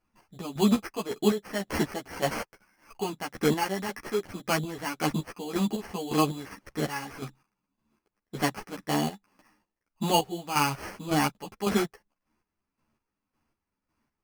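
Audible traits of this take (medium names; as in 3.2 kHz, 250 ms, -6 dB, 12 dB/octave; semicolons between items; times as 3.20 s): aliases and images of a low sample rate 3.7 kHz, jitter 0%; chopped level 1.8 Hz, depth 65%, duty 35%; a shimmering, thickened sound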